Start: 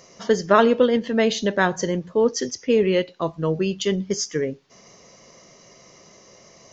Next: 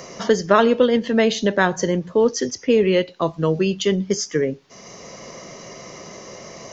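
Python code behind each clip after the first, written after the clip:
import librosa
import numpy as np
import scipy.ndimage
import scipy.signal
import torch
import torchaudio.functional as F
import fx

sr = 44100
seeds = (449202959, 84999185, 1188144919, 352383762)

y = fx.band_squash(x, sr, depth_pct=40)
y = y * librosa.db_to_amplitude(2.5)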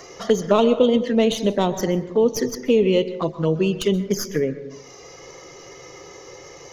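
y = fx.tracing_dist(x, sr, depth_ms=0.05)
y = fx.env_flanger(y, sr, rest_ms=3.0, full_db=-15.0)
y = fx.rev_plate(y, sr, seeds[0], rt60_s=0.86, hf_ratio=0.3, predelay_ms=115, drr_db=13.0)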